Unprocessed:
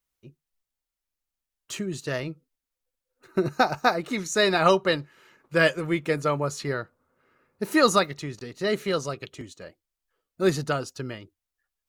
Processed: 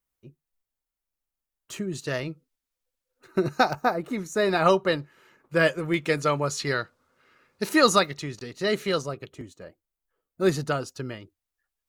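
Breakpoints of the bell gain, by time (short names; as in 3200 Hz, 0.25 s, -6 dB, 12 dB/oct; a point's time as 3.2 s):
bell 4300 Hz 2.5 oct
-5 dB
from 1.95 s +1 dB
from 3.73 s -10.5 dB
from 4.49 s -3.5 dB
from 5.94 s +5.5 dB
from 6.67 s +12 dB
from 7.69 s +2.5 dB
from 9.02 s -8 dB
from 10.41 s -1.5 dB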